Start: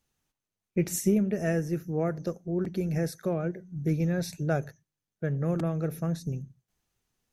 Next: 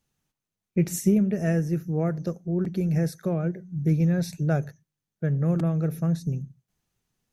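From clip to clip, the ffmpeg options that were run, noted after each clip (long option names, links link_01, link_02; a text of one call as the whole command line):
ffmpeg -i in.wav -af "equalizer=frequency=160:width=1.4:gain=6" out.wav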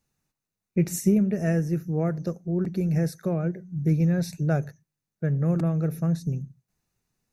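ffmpeg -i in.wav -af "bandreject=frequency=3200:width=5.6" out.wav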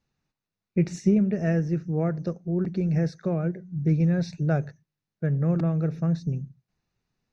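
ffmpeg -i in.wav -af "lowpass=frequency=5300:width=0.5412,lowpass=frequency=5300:width=1.3066" out.wav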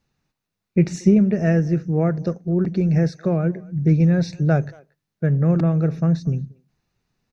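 ffmpeg -i in.wav -filter_complex "[0:a]asplit=2[link_01][link_02];[link_02]adelay=230,highpass=300,lowpass=3400,asoftclip=type=hard:threshold=-19dB,volume=-23dB[link_03];[link_01][link_03]amix=inputs=2:normalize=0,volume=6dB" out.wav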